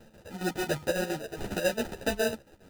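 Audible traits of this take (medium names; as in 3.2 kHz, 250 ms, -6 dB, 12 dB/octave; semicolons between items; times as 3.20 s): aliases and images of a low sample rate 1.1 kHz, jitter 0%; chopped level 7.3 Hz, depth 65%, duty 60%; a shimmering, thickened sound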